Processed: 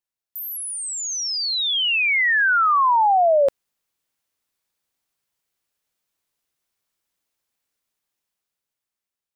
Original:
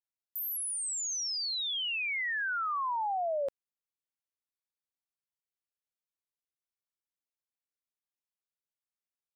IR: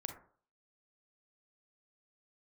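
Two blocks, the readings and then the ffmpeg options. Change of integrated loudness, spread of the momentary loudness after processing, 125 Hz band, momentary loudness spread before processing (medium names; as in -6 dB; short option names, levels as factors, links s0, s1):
+13.0 dB, 11 LU, no reading, 4 LU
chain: -af "dynaudnorm=f=480:g=7:m=3.55,volume=1.68"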